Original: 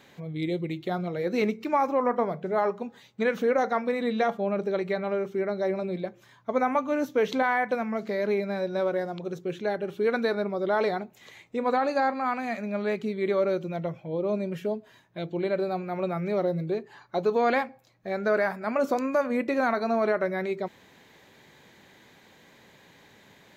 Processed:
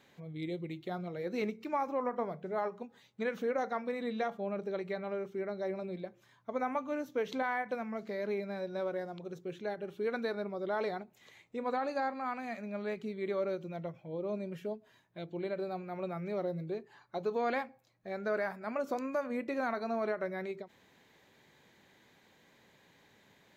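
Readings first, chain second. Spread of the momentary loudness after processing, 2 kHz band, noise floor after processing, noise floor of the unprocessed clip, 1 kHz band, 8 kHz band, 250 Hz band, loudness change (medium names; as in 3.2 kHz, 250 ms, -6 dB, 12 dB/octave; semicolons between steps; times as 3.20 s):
9 LU, -9.0 dB, -66 dBFS, -57 dBFS, -9.0 dB, no reading, -9.0 dB, -9.0 dB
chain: endings held to a fixed fall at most 300 dB/s; trim -9 dB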